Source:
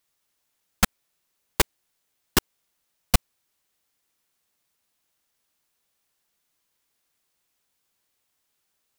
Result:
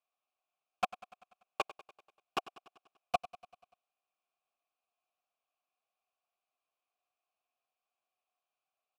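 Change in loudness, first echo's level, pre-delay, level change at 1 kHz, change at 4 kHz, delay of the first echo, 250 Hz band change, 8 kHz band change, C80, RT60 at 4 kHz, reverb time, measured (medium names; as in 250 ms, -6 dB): -13.0 dB, -17.0 dB, no reverb, -4.0 dB, -17.0 dB, 97 ms, -21.0 dB, -27.0 dB, no reverb, no reverb, no reverb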